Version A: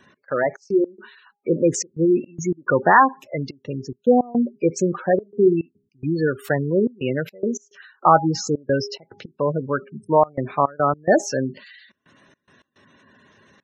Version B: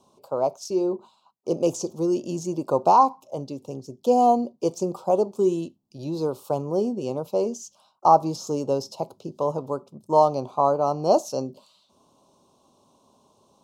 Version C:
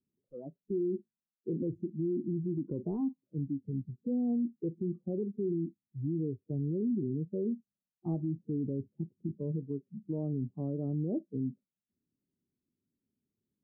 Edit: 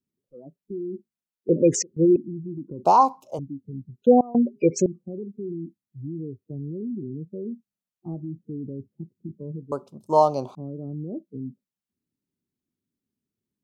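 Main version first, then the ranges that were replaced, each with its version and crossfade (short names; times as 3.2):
C
1.49–2.16 from A
2.85–3.39 from B
4.02–4.86 from A
9.72–10.55 from B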